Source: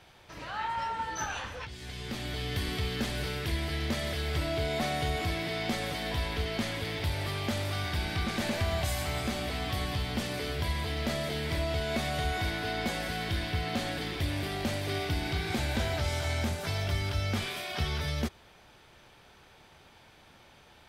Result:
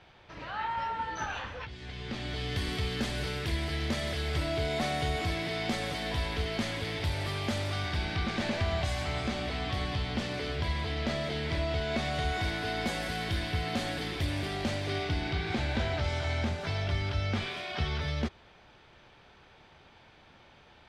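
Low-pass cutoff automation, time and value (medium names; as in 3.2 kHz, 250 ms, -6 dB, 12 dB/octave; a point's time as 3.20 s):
1.99 s 3.9 kHz
2.70 s 9.6 kHz
7.49 s 9.6 kHz
8.15 s 5.4 kHz
11.90 s 5.4 kHz
12.82 s 11 kHz
14.18 s 11 kHz
15.37 s 4.4 kHz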